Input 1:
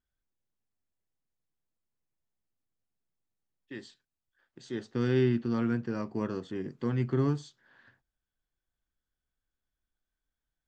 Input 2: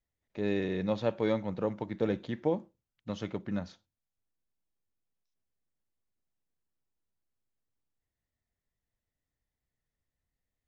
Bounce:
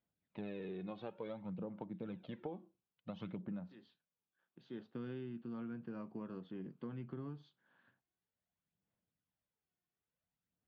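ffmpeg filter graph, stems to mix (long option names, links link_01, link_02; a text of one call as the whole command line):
ffmpeg -i stem1.wav -i stem2.wav -filter_complex "[0:a]volume=-9dB[link_01];[1:a]aphaser=in_gain=1:out_gain=1:delay=2.8:decay=0.58:speed=0.56:type=sinusoidal,volume=-4dB[link_02];[link_01][link_02]amix=inputs=2:normalize=0,highpass=140,equalizer=frequency=180:width_type=q:width=4:gain=8,equalizer=frequency=400:width_type=q:width=4:gain=-3,equalizer=frequency=1900:width_type=q:width=4:gain=-8,lowpass=frequency=3400:width=0.5412,lowpass=frequency=3400:width=1.3066,acompressor=threshold=-41dB:ratio=12" out.wav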